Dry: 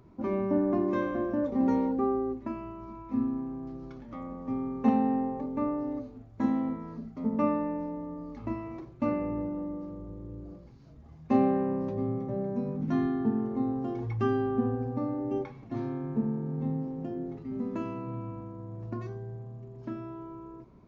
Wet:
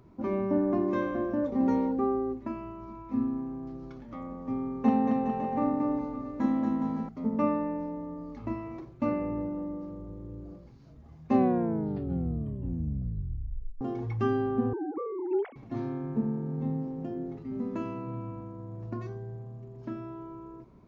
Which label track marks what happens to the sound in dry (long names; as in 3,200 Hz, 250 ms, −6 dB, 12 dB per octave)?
4.820000	7.090000	bouncing-ball delay first gap 230 ms, each gap 0.8×, echoes 6
11.330000	11.330000	tape stop 2.48 s
14.730000	15.560000	three sine waves on the formant tracks